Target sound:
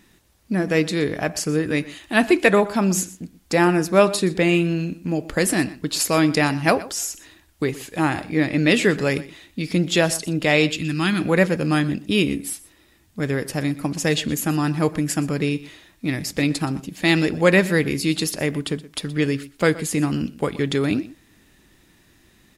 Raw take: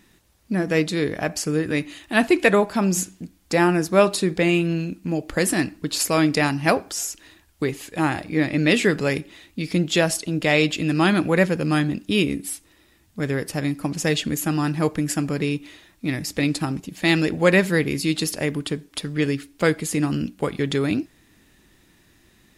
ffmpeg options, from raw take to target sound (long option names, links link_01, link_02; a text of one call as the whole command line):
ffmpeg -i in.wav -filter_complex "[0:a]asettb=1/sr,asplit=3[link_01][link_02][link_03];[link_01]atrim=end=10.694[link_04];[link_02]atrim=start=10.69:end=11.21,asetpts=PTS-STARTPTS,afade=type=in:duration=0.004:curve=qsin,afade=type=out:start_time=0.516:duration=0.004:curve=qsin,equalizer=frequency=580:width_type=o:width=1.5:gain=-13.5[link_05];[link_03]atrim=start=11.206[link_06];[link_04][link_05]acrossfade=duration=0.004:curve1=hsin:curve2=qsin[link_07];[link_07][link_06]acrossfade=duration=0.004:curve1=qsin:curve2=hsin,aecho=1:1:122:0.119,volume=1dB" out.wav